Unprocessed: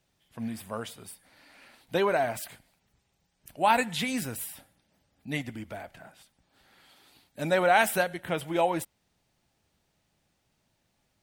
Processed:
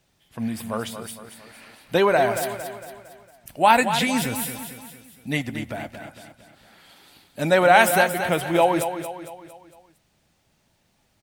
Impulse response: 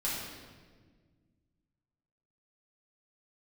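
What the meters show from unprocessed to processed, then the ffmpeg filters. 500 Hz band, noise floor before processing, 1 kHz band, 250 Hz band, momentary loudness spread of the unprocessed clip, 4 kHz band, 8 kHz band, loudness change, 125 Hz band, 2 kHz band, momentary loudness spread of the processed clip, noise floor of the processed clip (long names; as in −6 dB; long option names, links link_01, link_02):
+7.5 dB, −75 dBFS, +7.5 dB, +8.0 dB, 19 LU, +7.5 dB, +7.5 dB, +7.0 dB, +7.5 dB, +7.5 dB, 21 LU, −67 dBFS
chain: -af "aecho=1:1:228|456|684|912|1140:0.335|0.161|0.0772|0.037|0.0178,volume=7dB"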